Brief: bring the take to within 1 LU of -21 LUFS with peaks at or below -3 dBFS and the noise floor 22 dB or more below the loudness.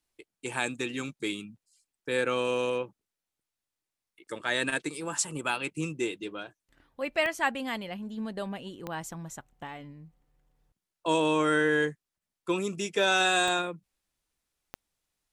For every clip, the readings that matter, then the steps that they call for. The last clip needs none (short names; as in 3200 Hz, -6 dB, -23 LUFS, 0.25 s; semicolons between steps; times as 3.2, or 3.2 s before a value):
clicks 4; loudness -29.5 LUFS; peak -12.0 dBFS; loudness target -21.0 LUFS
-> de-click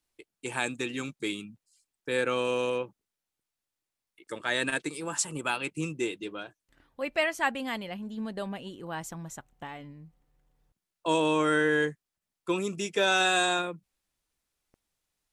clicks 0; loudness -29.5 LUFS; peak -12.0 dBFS; loudness target -21.0 LUFS
-> gain +8.5 dB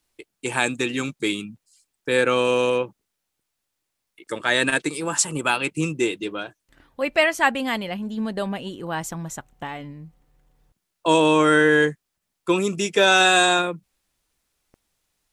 loudness -21.0 LUFS; peak -3.5 dBFS; noise floor -80 dBFS